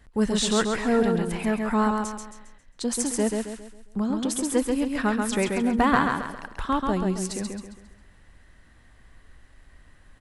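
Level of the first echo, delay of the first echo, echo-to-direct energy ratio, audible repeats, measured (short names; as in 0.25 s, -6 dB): -4.0 dB, 0.135 s, -3.5 dB, 4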